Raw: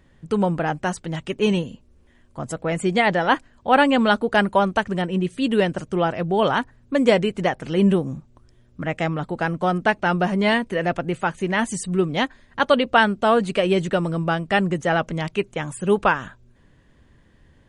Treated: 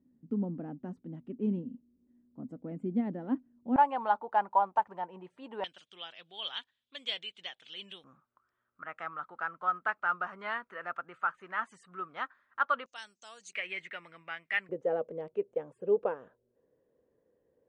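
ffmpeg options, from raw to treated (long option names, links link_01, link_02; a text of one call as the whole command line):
ffmpeg -i in.wav -af "asetnsamples=nb_out_samples=441:pad=0,asendcmd='3.76 bandpass f 890;5.64 bandpass f 3400;8.04 bandpass f 1300;12.86 bandpass f 6400;13.53 bandpass f 2100;14.69 bandpass f 480',bandpass=frequency=250:width_type=q:width=6.8:csg=0" out.wav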